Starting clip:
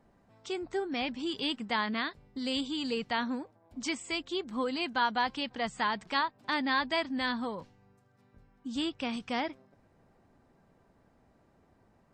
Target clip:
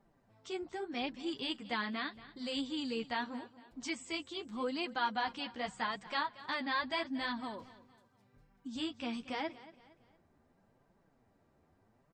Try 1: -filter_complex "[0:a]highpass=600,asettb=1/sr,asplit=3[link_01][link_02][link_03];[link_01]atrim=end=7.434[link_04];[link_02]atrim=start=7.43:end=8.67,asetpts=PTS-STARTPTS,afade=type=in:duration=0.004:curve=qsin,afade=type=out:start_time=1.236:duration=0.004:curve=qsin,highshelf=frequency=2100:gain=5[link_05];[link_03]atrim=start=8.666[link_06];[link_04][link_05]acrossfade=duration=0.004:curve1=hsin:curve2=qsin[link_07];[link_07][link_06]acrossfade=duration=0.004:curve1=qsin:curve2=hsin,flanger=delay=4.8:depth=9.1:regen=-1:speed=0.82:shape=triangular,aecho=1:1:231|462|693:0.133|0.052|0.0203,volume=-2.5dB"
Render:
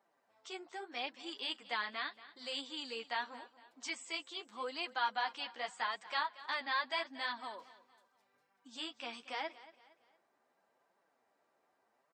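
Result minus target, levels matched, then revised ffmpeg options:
500 Hz band −3.0 dB
-filter_complex "[0:a]asettb=1/sr,asplit=3[link_01][link_02][link_03];[link_01]atrim=end=7.434[link_04];[link_02]atrim=start=7.43:end=8.67,asetpts=PTS-STARTPTS,afade=type=in:duration=0.004:curve=qsin,afade=type=out:start_time=1.236:duration=0.004:curve=qsin,highshelf=frequency=2100:gain=5[link_05];[link_03]atrim=start=8.666[link_06];[link_04][link_05]acrossfade=duration=0.004:curve1=hsin:curve2=qsin[link_07];[link_07][link_06]acrossfade=duration=0.004:curve1=qsin:curve2=hsin,flanger=delay=4.8:depth=9.1:regen=-1:speed=0.82:shape=triangular,aecho=1:1:231|462|693:0.133|0.052|0.0203,volume=-2.5dB"

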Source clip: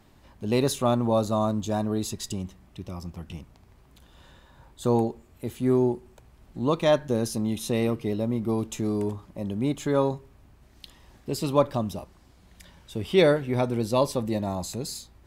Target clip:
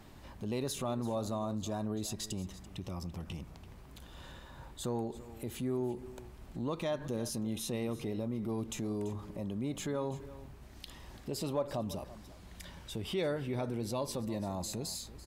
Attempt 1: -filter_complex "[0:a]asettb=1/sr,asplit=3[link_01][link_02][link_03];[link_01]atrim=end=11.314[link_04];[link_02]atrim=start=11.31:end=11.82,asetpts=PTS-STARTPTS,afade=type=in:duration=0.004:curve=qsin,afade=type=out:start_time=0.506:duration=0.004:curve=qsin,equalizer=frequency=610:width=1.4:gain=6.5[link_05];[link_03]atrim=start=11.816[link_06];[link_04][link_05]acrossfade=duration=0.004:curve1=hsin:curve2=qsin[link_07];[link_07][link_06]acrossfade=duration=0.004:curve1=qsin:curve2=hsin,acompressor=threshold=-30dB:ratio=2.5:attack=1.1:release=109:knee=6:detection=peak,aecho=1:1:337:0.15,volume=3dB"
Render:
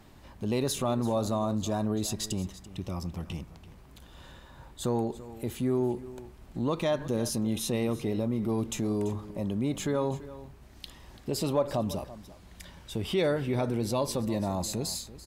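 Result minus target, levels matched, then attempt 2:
downward compressor: peak gain reduction −7 dB
-filter_complex "[0:a]asettb=1/sr,asplit=3[link_01][link_02][link_03];[link_01]atrim=end=11.314[link_04];[link_02]atrim=start=11.31:end=11.82,asetpts=PTS-STARTPTS,afade=type=in:duration=0.004:curve=qsin,afade=type=out:start_time=0.506:duration=0.004:curve=qsin,equalizer=frequency=610:width=1.4:gain=6.5[link_05];[link_03]atrim=start=11.816[link_06];[link_04][link_05]acrossfade=duration=0.004:curve1=hsin:curve2=qsin[link_07];[link_07][link_06]acrossfade=duration=0.004:curve1=qsin:curve2=hsin,acompressor=threshold=-41.5dB:ratio=2.5:attack=1.1:release=109:knee=6:detection=peak,aecho=1:1:337:0.15,volume=3dB"

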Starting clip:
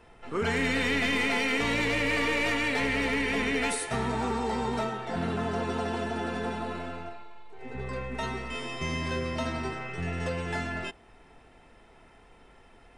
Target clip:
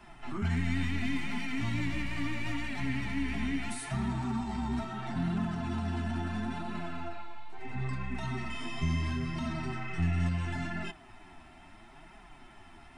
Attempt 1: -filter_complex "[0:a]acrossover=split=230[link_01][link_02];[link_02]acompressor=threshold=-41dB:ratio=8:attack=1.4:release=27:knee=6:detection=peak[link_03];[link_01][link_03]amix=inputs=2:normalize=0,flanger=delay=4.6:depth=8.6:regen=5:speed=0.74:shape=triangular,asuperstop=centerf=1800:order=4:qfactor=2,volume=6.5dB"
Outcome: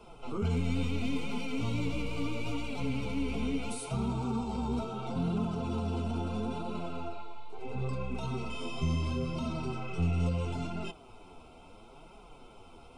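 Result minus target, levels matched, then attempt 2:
500 Hz band +6.5 dB
-filter_complex "[0:a]acrossover=split=230[link_01][link_02];[link_02]acompressor=threshold=-41dB:ratio=8:attack=1.4:release=27:knee=6:detection=peak[link_03];[link_01][link_03]amix=inputs=2:normalize=0,flanger=delay=4.6:depth=8.6:regen=5:speed=0.74:shape=triangular,asuperstop=centerf=480:order=4:qfactor=2,volume=6.5dB"

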